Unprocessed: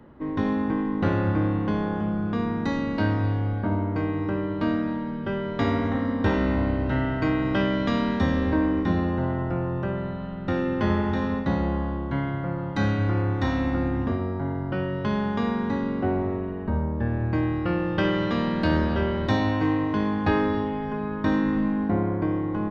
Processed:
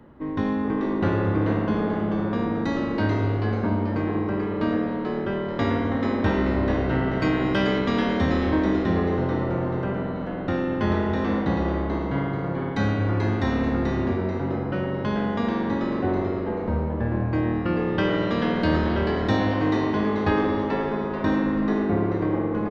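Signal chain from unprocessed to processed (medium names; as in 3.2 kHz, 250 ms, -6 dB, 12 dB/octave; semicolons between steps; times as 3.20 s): 7.19–7.78 s: treble shelf 3.8 kHz -> 4.6 kHz +12 dB; frequency-shifting echo 436 ms, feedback 36%, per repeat +120 Hz, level -6 dB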